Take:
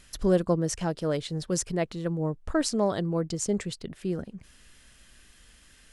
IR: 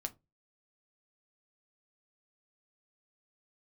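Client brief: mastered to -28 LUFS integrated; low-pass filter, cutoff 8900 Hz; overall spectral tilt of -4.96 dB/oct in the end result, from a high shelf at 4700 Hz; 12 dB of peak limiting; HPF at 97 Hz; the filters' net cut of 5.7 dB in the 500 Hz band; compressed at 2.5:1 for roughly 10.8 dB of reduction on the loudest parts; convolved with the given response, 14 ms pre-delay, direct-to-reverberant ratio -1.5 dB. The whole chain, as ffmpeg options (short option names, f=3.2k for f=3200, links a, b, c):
-filter_complex "[0:a]highpass=97,lowpass=8.9k,equalizer=f=500:t=o:g=-7.5,highshelf=f=4.7k:g=5,acompressor=threshold=-39dB:ratio=2.5,alimiter=level_in=8dB:limit=-24dB:level=0:latency=1,volume=-8dB,asplit=2[a][b];[1:a]atrim=start_sample=2205,adelay=14[c];[b][c]afir=irnorm=-1:irlink=0,volume=3dB[d];[a][d]amix=inputs=2:normalize=0,volume=9.5dB"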